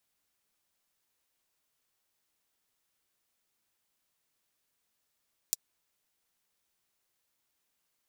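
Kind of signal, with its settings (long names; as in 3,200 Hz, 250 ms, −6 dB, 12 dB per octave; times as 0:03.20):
closed synth hi-hat, high-pass 5,500 Hz, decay 0.03 s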